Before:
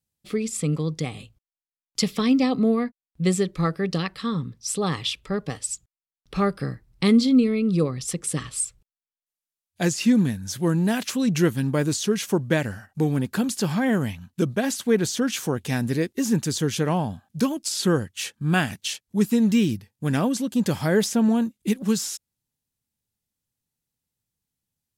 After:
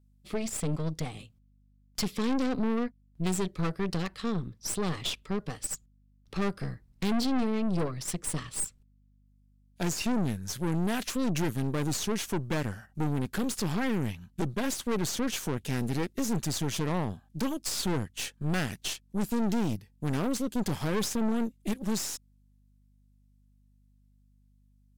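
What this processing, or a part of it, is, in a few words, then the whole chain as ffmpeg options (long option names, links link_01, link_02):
valve amplifier with mains hum: -af "aeval=exprs='(tanh(20*val(0)+0.8)-tanh(0.8))/20':channel_layout=same,aeval=exprs='val(0)+0.000794*(sin(2*PI*50*n/s)+sin(2*PI*2*50*n/s)/2+sin(2*PI*3*50*n/s)/3+sin(2*PI*4*50*n/s)/4+sin(2*PI*5*50*n/s)/5)':channel_layout=same"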